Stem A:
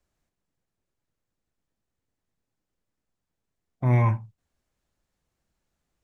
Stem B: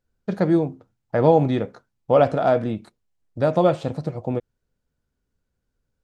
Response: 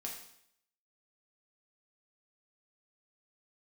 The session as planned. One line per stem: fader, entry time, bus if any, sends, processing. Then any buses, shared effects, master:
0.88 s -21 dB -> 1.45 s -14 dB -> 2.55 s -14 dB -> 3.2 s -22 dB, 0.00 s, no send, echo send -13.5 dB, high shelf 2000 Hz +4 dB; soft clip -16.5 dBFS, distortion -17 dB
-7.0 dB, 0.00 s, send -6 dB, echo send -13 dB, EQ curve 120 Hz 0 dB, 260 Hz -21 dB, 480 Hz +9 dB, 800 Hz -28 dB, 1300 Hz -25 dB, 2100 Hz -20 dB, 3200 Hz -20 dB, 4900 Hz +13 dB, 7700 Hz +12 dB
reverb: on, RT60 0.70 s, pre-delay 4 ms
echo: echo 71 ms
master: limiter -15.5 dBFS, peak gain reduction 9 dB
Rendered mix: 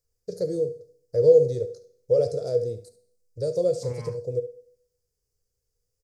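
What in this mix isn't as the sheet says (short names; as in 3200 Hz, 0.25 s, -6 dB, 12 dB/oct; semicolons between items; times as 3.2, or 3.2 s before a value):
stem A -21.0 dB -> -14.5 dB; master: missing limiter -15.5 dBFS, peak gain reduction 9 dB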